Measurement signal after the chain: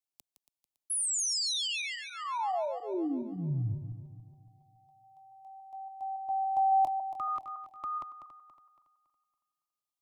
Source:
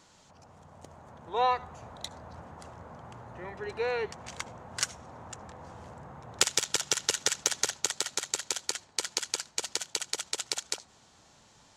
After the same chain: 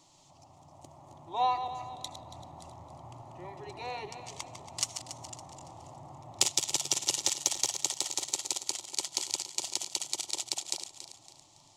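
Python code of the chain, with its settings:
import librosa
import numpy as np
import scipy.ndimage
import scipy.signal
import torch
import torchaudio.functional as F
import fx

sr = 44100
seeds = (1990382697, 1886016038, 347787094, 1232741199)

y = fx.reverse_delay_fb(x, sr, ms=140, feedback_pct=61, wet_db=-9)
y = fx.fixed_phaser(y, sr, hz=310.0, stages=8)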